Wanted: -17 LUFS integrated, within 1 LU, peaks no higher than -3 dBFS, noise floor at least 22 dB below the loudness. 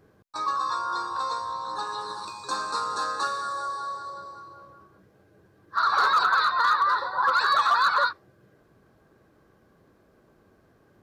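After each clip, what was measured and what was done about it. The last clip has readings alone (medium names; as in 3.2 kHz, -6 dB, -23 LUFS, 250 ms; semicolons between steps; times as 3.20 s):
clipped samples 0.3%; clipping level -15.0 dBFS; loudness -25.0 LUFS; peak level -15.0 dBFS; loudness target -17.0 LUFS
-> clip repair -15 dBFS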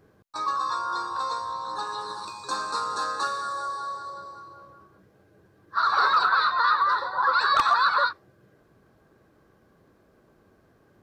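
clipped samples 0.0%; loudness -25.0 LUFS; peak level -6.0 dBFS; loudness target -17.0 LUFS
-> trim +8 dB; peak limiter -3 dBFS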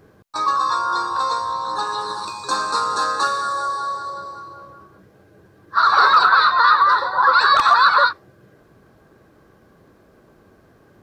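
loudness -17.0 LUFS; peak level -3.0 dBFS; noise floor -54 dBFS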